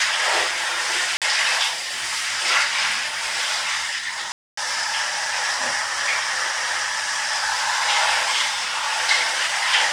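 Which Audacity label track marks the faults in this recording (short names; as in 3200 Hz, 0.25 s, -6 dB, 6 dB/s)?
1.170000	1.220000	gap 47 ms
4.320000	4.570000	gap 0.254 s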